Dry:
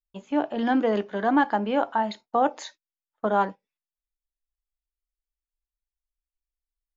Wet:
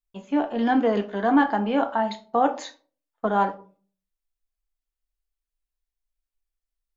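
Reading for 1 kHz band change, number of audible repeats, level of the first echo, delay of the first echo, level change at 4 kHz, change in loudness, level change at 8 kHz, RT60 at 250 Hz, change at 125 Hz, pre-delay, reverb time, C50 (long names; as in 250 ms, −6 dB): +1.0 dB, no echo audible, no echo audible, no echo audible, +1.0 dB, +1.5 dB, can't be measured, 0.50 s, can't be measured, 3 ms, 0.40 s, 15.0 dB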